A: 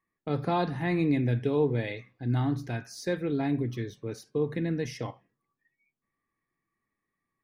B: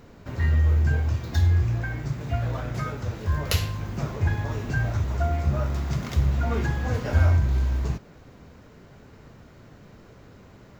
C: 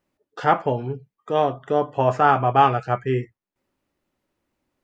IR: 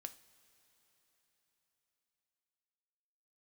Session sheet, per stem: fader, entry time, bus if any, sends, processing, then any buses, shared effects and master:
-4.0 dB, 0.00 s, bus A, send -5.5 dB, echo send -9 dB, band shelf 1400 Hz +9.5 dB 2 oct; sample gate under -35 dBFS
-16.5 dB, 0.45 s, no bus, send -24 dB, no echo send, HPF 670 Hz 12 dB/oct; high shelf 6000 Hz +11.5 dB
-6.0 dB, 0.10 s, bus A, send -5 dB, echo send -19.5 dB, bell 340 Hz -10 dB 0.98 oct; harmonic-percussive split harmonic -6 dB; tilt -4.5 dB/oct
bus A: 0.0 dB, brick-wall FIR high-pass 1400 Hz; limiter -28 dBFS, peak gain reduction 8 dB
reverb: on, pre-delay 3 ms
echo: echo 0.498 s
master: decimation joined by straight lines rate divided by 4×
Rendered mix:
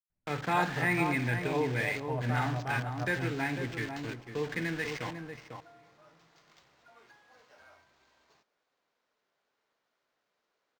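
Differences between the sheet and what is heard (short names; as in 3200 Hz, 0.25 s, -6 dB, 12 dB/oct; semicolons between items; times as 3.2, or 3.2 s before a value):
stem B -16.5 dB -> -25.0 dB; stem C -6.0 dB -> -15.5 dB; reverb return +8.0 dB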